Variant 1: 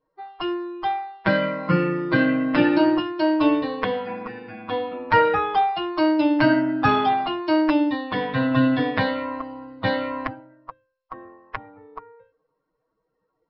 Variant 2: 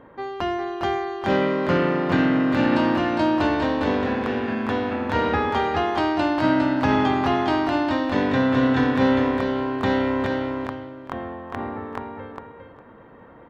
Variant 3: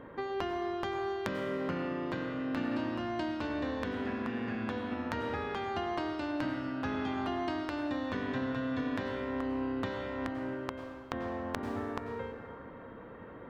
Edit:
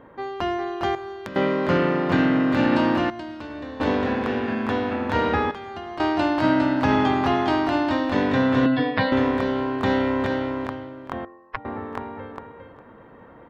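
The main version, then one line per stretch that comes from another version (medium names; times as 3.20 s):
2
0.95–1.36 s: from 3
3.10–3.80 s: from 3
5.51–6.00 s: from 3
8.66–9.12 s: from 1
11.25–11.65 s: from 1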